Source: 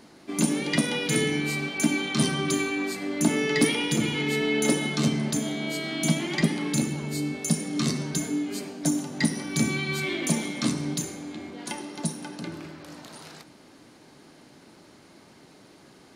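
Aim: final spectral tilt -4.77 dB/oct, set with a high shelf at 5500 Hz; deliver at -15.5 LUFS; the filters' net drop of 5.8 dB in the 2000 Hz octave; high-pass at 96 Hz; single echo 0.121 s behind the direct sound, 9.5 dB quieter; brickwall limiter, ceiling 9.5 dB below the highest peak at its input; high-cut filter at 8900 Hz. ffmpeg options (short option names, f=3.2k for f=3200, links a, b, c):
-af "highpass=96,lowpass=8.9k,equalizer=f=2k:t=o:g=-6,highshelf=f=5.5k:g=-5,alimiter=limit=-19.5dB:level=0:latency=1,aecho=1:1:121:0.335,volume=14.5dB"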